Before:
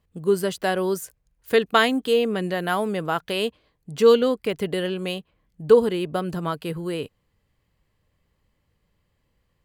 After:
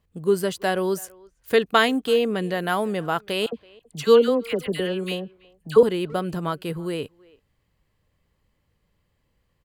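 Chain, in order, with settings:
0:03.46–0:05.83: all-pass dispersion lows, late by 68 ms, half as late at 1,300 Hz
far-end echo of a speakerphone 330 ms, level −24 dB

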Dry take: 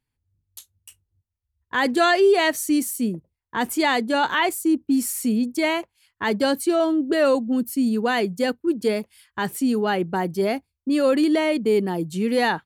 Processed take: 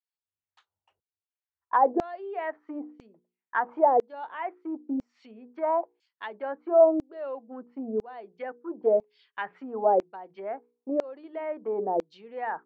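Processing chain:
mains-hum notches 60/120/180/240/300/360/420/480 Hz
treble cut that deepens with the level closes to 790 Hz, closed at −19.5 dBFS
parametric band 730 Hz +11 dB 1.7 octaves
auto-filter band-pass saw down 1 Hz 490–7,100 Hz
high-frequency loss of the air 180 metres

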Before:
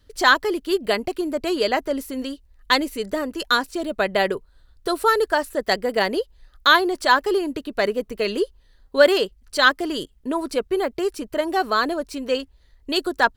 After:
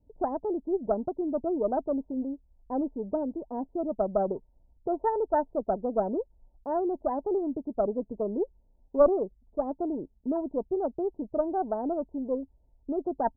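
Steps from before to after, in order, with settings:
Chebyshev low-pass with heavy ripple 930 Hz, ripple 6 dB
harmonic generator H 2 −13 dB, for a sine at −9 dBFS
level −2 dB

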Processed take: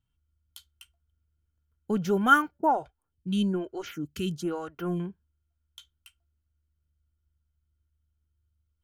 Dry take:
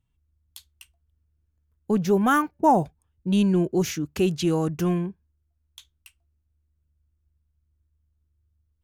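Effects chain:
hollow resonant body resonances 1,400/3,100 Hz, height 15 dB, ringing for 45 ms
0:02.58–0:05.00: phaser with staggered stages 1.1 Hz
level −5 dB

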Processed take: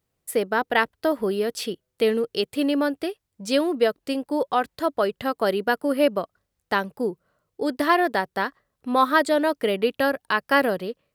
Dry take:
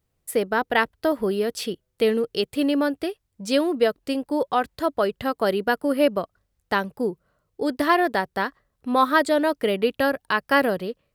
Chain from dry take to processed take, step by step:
low-shelf EQ 79 Hz −12 dB

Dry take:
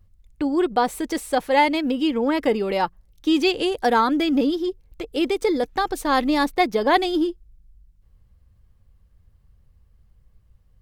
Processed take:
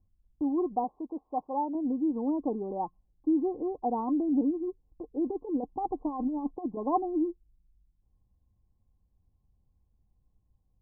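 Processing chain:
0:00.84–0:01.75: spectral tilt +2.5 dB per octave
0:05.26–0:06.77: compressor whose output falls as the input rises −22 dBFS, ratio −0.5
Chebyshev low-pass with heavy ripple 1,100 Hz, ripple 9 dB
level −5.5 dB

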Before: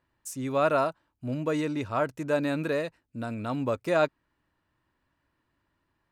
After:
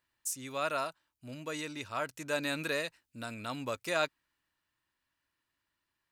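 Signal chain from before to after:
tilt shelving filter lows −9 dB, about 1,500 Hz
speech leveller 2 s
level −3.5 dB

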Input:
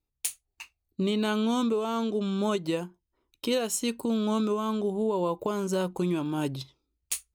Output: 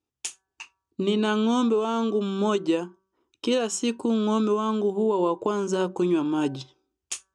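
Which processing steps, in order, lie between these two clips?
loudspeaker in its box 130–7,300 Hz, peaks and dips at 160 Hz −9 dB, 340 Hz +3 dB, 590 Hz −5 dB, 2,100 Hz −7 dB, 4,200 Hz −8 dB
hum removal 190.7 Hz, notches 9
level +5 dB

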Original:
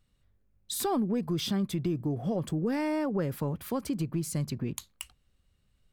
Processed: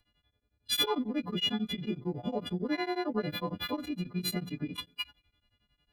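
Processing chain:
every partial snapped to a pitch grid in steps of 3 semitones
dynamic equaliser 8,700 Hz, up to −5 dB, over −38 dBFS, Q 0.84
harmonic generator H 2 −40 dB, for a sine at −13.5 dBFS
on a send at −19 dB: convolution reverb RT60 0.65 s, pre-delay 3 ms
on the sum: phase-vocoder pitch shift with formants kept +2.5 semitones
tremolo along a rectified sine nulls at 11 Hz

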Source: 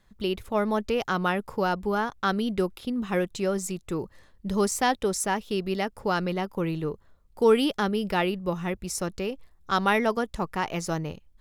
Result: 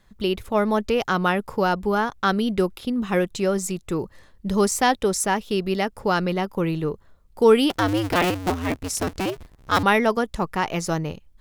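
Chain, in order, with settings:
0:07.70–0:09.83: sub-harmonics by changed cycles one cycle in 2, inverted
level +4.5 dB

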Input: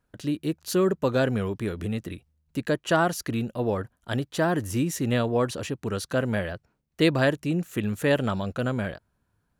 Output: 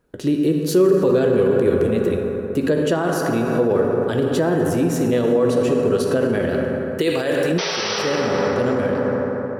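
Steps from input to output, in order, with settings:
0:06.49–0:07.52: spectral tilt +2.5 dB per octave
0:07.58–0:07.99: sound drawn into the spectrogram noise 400–6,100 Hz −13 dBFS
convolution reverb RT60 3.7 s, pre-delay 3 ms, DRR 2 dB
brickwall limiter −21 dBFS, peak gain reduction 21 dB
parametric band 400 Hz +12 dB 0.96 octaves
level +5 dB

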